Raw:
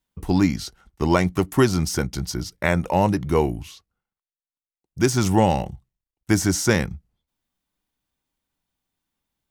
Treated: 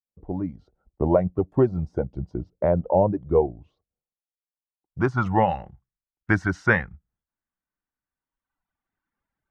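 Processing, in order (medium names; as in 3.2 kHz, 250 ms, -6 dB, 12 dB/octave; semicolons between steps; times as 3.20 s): fade-in on the opening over 0.98 s; reverb removal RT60 1.6 s; dynamic bell 300 Hz, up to -5 dB, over -31 dBFS, Q 0.77; low-pass sweep 580 Hz -> 1.6 kHz, 4.02–5.47 s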